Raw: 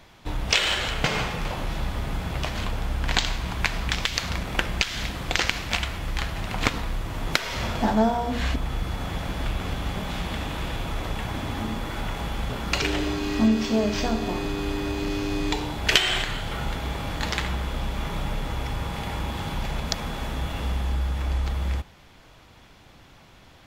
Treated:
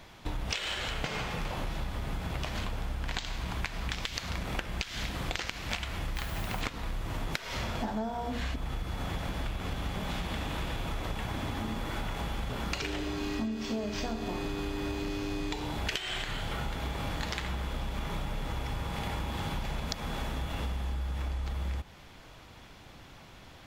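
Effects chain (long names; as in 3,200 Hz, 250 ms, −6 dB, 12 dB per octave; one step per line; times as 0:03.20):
downward compressor 12 to 1, threshold −30 dBFS, peak gain reduction 17.5 dB
0:06.15–0:06.60: background noise blue −50 dBFS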